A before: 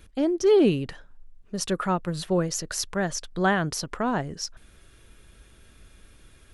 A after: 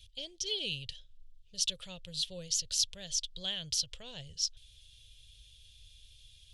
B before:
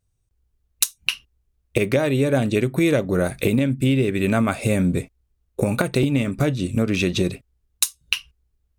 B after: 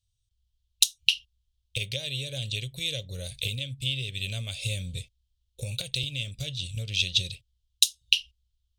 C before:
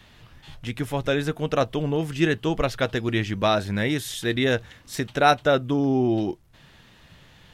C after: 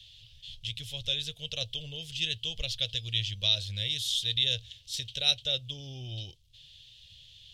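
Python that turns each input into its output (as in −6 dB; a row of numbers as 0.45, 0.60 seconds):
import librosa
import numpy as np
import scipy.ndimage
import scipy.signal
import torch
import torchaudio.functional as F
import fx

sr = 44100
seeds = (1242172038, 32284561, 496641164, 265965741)

y = fx.curve_eq(x, sr, hz=(110.0, 230.0, 350.0, 520.0, 760.0, 1300.0, 2100.0, 3200.0, 12000.0), db=(0, -24, -27, -11, -23, -27, -10, 14, -2))
y = y * 10.0 ** (-6.5 / 20.0)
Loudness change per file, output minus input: −8.5, −7.0, −6.5 LU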